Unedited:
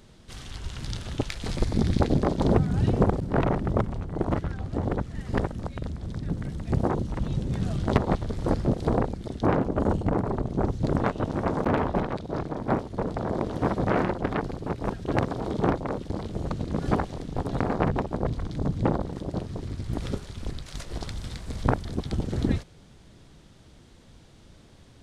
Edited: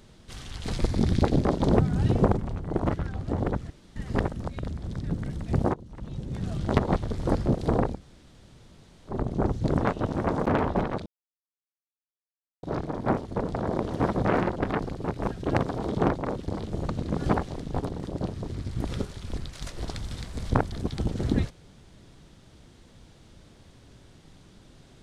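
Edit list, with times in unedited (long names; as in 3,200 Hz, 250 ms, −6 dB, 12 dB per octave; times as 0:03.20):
0:00.60–0:01.38: remove
0:03.15–0:03.82: remove
0:05.15: splice in room tone 0.26 s
0:06.93–0:08.06: fade in, from −21 dB
0:09.16–0:10.31: fill with room tone, crossfade 0.10 s
0:12.25: splice in silence 1.57 s
0:17.51–0:19.02: remove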